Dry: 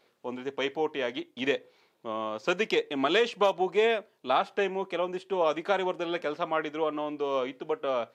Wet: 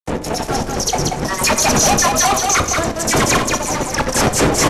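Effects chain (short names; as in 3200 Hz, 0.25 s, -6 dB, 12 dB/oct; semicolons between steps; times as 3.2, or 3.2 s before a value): wind noise 270 Hz -26 dBFS; resonant high shelf 2900 Hz +11.5 dB, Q 3; level quantiser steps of 22 dB; step gate "xx...x.x.x" 189 bpm -12 dB; dispersion lows, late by 0.137 s, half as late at 1300 Hz; fuzz box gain 42 dB, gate -51 dBFS; echo 0.319 s -4 dB; on a send at -9 dB: reverb RT60 0.85 s, pre-delay 14 ms; on the sum: downsampling 16000 Hz; speed mistake 45 rpm record played at 78 rpm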